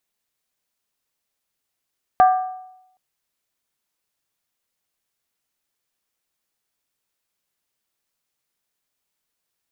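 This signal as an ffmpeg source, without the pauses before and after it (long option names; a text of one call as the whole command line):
ffmpeg -f lavfi -i "aevalsrc='0.422*pow(10,-3*t/0.84)*sin(2*PI*744*t)+0.141*pow(10,-3*t/0.665)*sin(2*PI*1185.9*t)+0.0473*pow(10,-3*t/0.575)*sin(2*PI*1589.2*t)+0.0158*pow(10,-3*t/0.554)*sin(2*PI*1708.2*t)+0.00531*pow(10,-3*t/0.516)*sin(2*PI*1973.8*t)':duration=0.77:sample_rate=44100" out.wav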